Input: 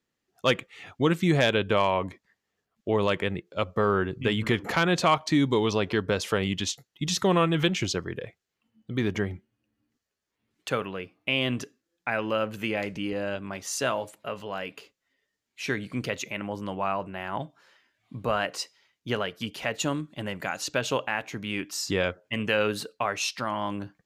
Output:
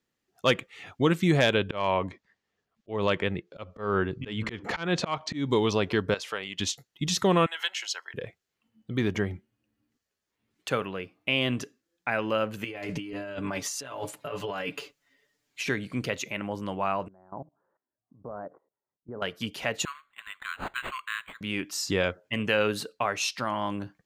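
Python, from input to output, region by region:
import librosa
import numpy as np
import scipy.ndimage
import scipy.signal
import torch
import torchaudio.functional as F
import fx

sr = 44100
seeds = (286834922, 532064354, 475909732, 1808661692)

y = fx.chain(x, sr, fx.lowpass(hz=6100.0, slope=12),
    fx.auto_swell(attack_ms=199.0), at=(1.64, 5.49))
y = fx.chain(y, sr, fx.highpass(hz=1400.0, slope=6),
    fx.high_shelf(hz=5100.0, db=-10.5), at=(6.14, 6.59))
y = fx.chain(y, sr, fx.highpass(hz=890.0, slope=24),
    fx.notch_comb(f0_hz=1200.0), at=(7.46, 8.14))
y = fx.chain(y, sr, fx.comb(ms=6.9, depth=0.79),
    fx.over_compress(threshold_db=-35.0, ratio=-1.0), at=(12.64, 15.69))
y = fx.chain(y, sr, fx.gaussian_blur(sigma=8.8),
    fx.low_shelf(hz=150.0, db=-7.5),
    fx.level_steps(step_db=19), at=(17.08, 19.22))
y = fx.chain(y, sr, fx.brickwall_highpass(low_hz=1000.0),
    fx.resample_linear(factor=8), at=(19.85, 21.41))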